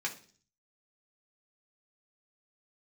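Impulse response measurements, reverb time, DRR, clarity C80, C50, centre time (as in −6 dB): 0.45 s, −1.5 dB, 18.0 dB, 13.0 dB, 11 ms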